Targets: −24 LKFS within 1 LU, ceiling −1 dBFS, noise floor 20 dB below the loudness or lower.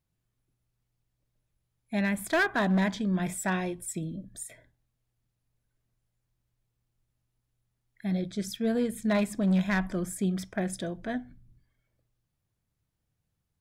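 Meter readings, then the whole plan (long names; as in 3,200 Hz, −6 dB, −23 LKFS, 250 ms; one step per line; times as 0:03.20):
share of clipped samples 0.6%; peaks flattened at −20.5 dBFS; integrated loudness −29.5 LKFS; sample peak −20.5 dBFS; target loudness −24.0 LKFS
→ clipped peaks rebuilt −20.5 dBFS
level +5.5 dB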